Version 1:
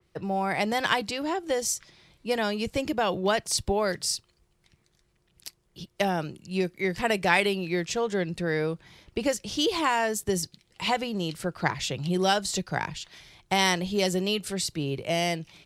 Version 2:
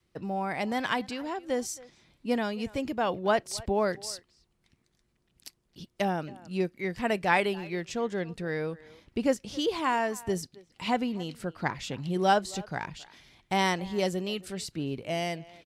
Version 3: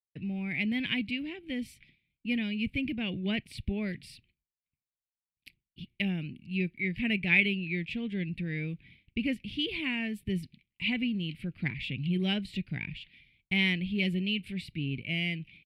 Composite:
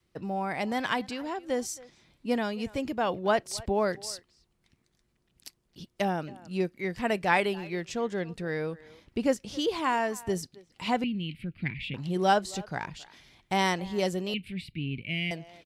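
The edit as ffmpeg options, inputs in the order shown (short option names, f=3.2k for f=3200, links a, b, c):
-filter_complex "[2:a]asplit=2[a][b];[1:a]asplit=3[c][d][e];[c]atrim=end=11.042[f];[a]atrim=start=11.038:end=11.942[g];[d]atrim=start=11.938:end=14.342[h];[b]atrim=start=14.338:end=15.312[i];[e]atrim=start=15.308[j];[f][g]acrossfade=d=0.004:c1=hsin:c2=hsin[k];[k][h]acrossfade=d=0.004:c1=hsin:c2=hsin[l];[l][i]acrossfade=d=0.004:c1=hsin:c2=hsin[m];[m][j]acrossfade=d=0.004:c1=hsin:c2=hsin"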